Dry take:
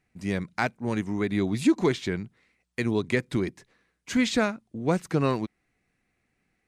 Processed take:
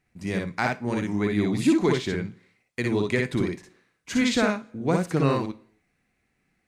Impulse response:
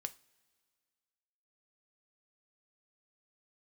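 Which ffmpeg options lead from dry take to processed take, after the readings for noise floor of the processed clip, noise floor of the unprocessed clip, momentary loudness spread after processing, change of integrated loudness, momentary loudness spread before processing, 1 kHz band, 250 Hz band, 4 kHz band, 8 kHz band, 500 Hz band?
-74 dBFS, -76 dBFS, 10 LU, +2.0 dB, 9 LU, +2.5 dB, +2.0 dB, +2.0 dB, +2.0 dB, +2.0 dB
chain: -filter_complex "[0:a]asplit=2[s0][s1];[1:a]atrim=start_sample=2205,afade=t=out:st=0.36:d=0.01,atrim=end_sample=16317,adelay=58[s2];[s1][s2]afir=irnorm=-1:irlink=0,volume=1.06[s3];[s0][s3]amix=inputs=2:normalize=0"

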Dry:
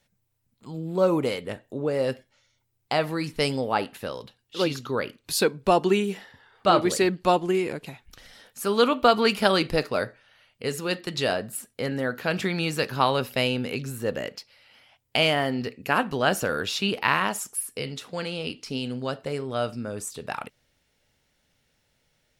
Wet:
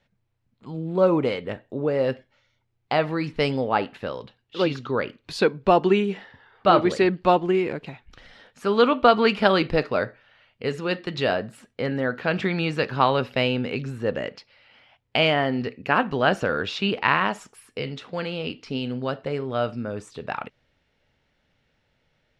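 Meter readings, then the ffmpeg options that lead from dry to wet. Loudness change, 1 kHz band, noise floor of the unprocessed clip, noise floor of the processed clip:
+2.0 dB, +2.5 dB, -72 dBFS, -71 dBFS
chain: -af "lowpass=3200,volume=1.33"

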